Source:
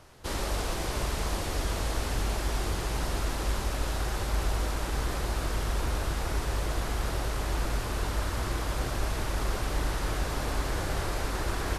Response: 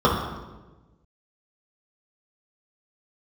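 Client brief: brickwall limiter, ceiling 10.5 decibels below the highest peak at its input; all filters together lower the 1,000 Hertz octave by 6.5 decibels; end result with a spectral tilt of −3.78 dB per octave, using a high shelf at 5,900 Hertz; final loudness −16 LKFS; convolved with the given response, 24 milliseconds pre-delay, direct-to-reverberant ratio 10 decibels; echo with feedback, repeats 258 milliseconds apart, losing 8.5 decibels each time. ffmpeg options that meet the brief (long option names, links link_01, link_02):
-filter_complex "[0:a]equalizer=frequency=1000:width_type=o:gain=-9,highshelf=frequency=5900:gain=8,alimiter=level_in=3dB:limit=-24dB:level=0:latency=1,volume=-3dB,aecho=1:1:258|516|774|1032:0.376|0.143|0.0543|0.0206,asplit=2[link_01][link_02];[1:a]atrim=start_sample=2205,adelay=24[link_03];[link_02][link_03]afir=irnorm=-1:irlink=0,volume=-32dB[link_04];[link_01][link_04]amix=inputs=2:normalize=0,volume=19.5dB"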